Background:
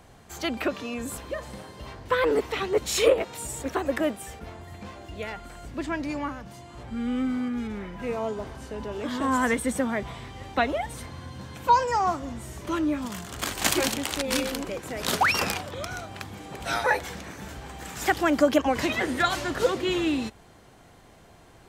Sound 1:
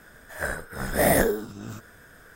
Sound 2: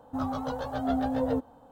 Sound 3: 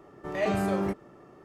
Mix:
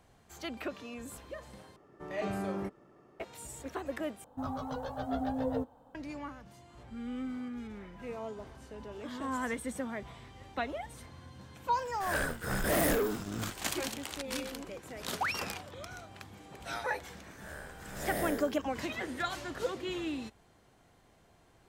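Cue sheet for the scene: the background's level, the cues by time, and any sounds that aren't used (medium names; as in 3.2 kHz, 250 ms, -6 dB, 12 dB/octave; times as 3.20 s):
background -11 dB
1.76 s: replace with 3 -8 dB
4.24 s: replace with 2 -1 dB + flange 1.7 Hz, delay 0.1 ms, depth 2.3 ms, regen -75%
11.71 s: add 1 -17.5 dB + waveshaping leveller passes 5
17.09 s: add 1 -12.5 dB + spectral blur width 188 ms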